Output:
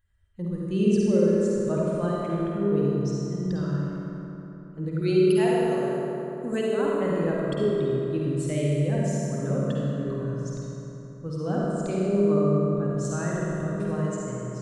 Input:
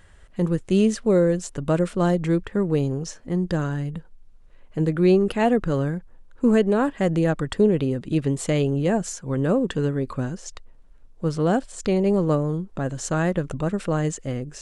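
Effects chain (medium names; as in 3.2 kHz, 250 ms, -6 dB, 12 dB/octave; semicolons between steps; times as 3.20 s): expander on every frequency bin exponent 1.5; 5.01–6.85 s: RIAA curve recording; reverberation RT60 3.5 s, pre-delay 48 ms, DRR -6 dB; trim -8 dB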